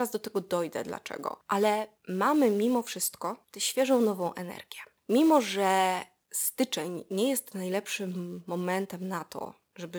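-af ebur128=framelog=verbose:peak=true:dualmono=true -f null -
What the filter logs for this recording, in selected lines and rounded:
Integrated loudness:
  I:         -26.1 LUFS
  Threshold: -36.5 LUFS
Loudness range:
  LRA:         4.3 LU
  Threshold: -45.8 LUFS
  LRA low:   -28.8 LUFS
  LRA high:  -24.5 LUFS
True peak:
  Peak:      -11.2 dBFS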